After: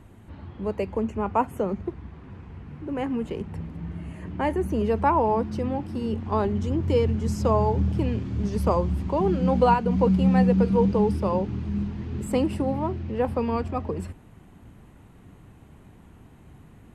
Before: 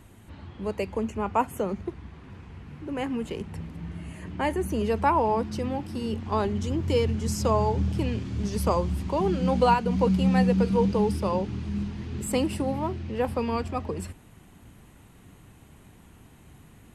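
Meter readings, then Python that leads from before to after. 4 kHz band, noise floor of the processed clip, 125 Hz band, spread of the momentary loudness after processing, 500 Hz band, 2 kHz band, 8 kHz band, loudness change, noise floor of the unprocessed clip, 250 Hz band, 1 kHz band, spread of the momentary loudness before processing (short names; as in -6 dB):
-5.0 dB, -51 dBFS, +2.5 dB, 16 LU, +2.0 dB, -1.5 dB, n/a, +2.0 dB, -53 dBFS, +2.5 dB, +1.0 dB, 16 LU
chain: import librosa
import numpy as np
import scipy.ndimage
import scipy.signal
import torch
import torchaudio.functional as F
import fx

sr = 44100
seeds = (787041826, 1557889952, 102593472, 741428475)

y = fx.high_shelf(x, sr, hz=2400.0, db=-11.0)
y = y * 10.0 ** (2.5 / 20.0)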